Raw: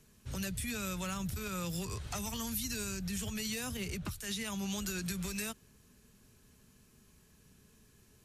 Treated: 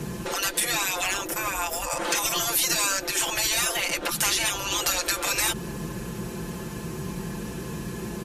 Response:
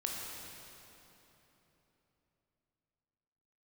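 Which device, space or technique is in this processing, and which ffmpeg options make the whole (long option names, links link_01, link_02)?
mastering chain: -filter_complex "[0:a]asettb=1/sr,asplit=3[link_01][link_02][link_03];[link_01]atrim=end=1.274[link_04];[link_02]atrim=start=1.27:end=2.05,asetpts=PTS-STARTPTS,afade=type=in:duration=0.004:curve=qsin,afade=type=out:start_time=0.776:duration=0.004:curve=qsin,equalizer=frequency=100:width_type=o:width=0.67:gain=-11,equalizer=frequency=250:width_type=o:width=0.67:gain=10,equalizer=frequency=4000:width_type=o:width=0.67:gain=-11[link_05];[link_03]atrim=start=2.046[link_06];[link_04][link_05]acrossfade=duration=0.004:curve1=hsin:curve2=qsin[link_07];[link_07][link_06]acrossfade=duration=0.004:curve1=qsin:curve2=hsin,highpass=frequency=57:width=0.5412,highpass=frequency=57:width=1.3066,equalizer=frequency=920:width_type=o:width=0.23:gain=4,acompressor=threshold=-42dB:ratio=2,tiltshelf=frequency=1500:gain=7,alimiter=level_in=33dB:limit=-1dB:release=50:level=0:latency=1,afftfilt=real='re*lt(hypot(re,im),0.447)':imag='im*lt(hypot(re,im),0.447)':win_size=1024:overlap=0.75,aecho=1:1:5.8:0.76,volume=-5.5dB"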